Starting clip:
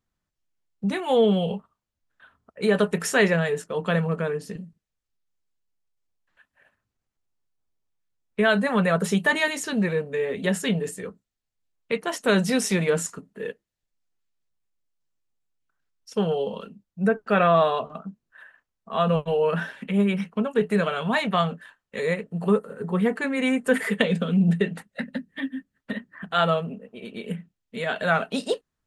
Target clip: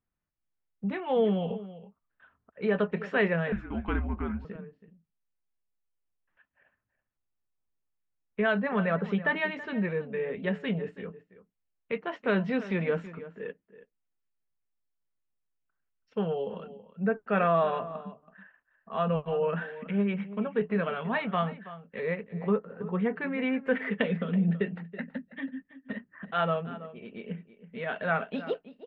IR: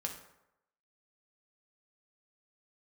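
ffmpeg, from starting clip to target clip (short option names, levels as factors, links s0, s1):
-filter_complex "[0:a]lowpass=f=2800:w=0.5412,lowpass=f=2800:w=1.3066,asplit=2[s0][s1];[s1]adelay=326.5,volume=0.178,highshelf=f=4000:g=-7.35[s2];[s0][s2]amix=inputs=2:normalize=0,asettb=1/sr,asplit=3[s3][s4][s5];[s3]atrim=end=3.524[s6];[s4]atrim=start=3.52:end=4.45,asetpts=PTS-STARTPTS,afade=t=in:d=0.004:c=qsin,afade=t=out:st=0.926:d=0.004:c=qsin,afreqshift=-230[s7];[s5]atrim=start=4.446[s8];[s6][s7]acrossfade=d=0.004:c1=hsin:c2=qsin[s9];[s9][s8]acrossfade=d=0.004:c1=qsin:c2=hsin,volume=0.501"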